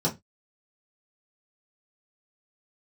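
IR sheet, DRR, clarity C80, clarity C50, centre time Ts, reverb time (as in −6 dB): −5.5 dB, 25.5 dB, 16.5 dB, 14 ms, 0.20 s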